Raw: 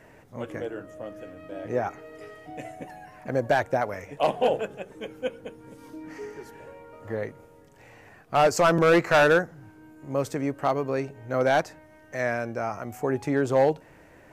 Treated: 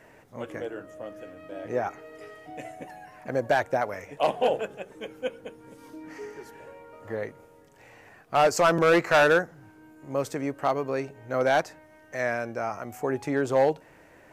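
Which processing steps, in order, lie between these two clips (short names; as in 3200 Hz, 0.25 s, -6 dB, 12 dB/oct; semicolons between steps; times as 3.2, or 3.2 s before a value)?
low shelf 230 Hz -6 dB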